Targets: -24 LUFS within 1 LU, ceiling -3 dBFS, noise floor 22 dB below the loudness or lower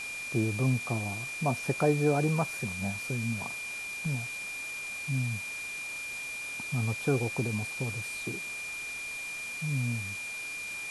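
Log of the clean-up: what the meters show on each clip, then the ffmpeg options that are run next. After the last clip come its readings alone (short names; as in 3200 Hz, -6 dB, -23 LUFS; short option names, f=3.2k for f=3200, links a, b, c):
steady tone 2400 Hz; tone level -36 dBFS; noise floor -38 dBFS; noise floor target -54 dBFS; loudness -32.0 LUFS; peak -14.0 dBFS; loudness target -24.0 LUFS
-> -af "bandreject=f=2.4k:w=30"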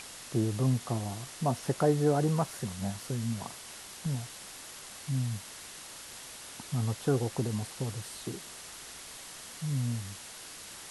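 steady tone none; noise floor -47 dBFS; noise floor target -56 dBFS
-> -af "afftdn=nr=9:nf=-47"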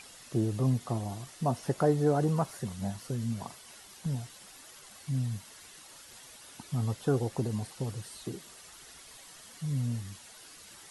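noise floor -52 dBFS; noise floor target -55 dBFS
-> -af "afftdn=nr=6:nf=-52"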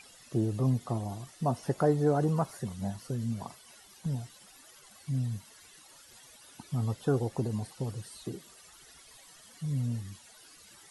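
noise floor -56 dBFS; loudness -32.5 LUFS; peak -14.5 dBFS; loudness target -24.0 LUFS
-> -af "volume=8.5dB"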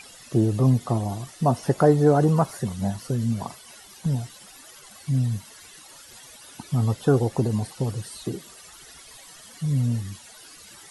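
loudness -24.0 LUFS; peak -6.0 dBFS; noise floor -47 dBFS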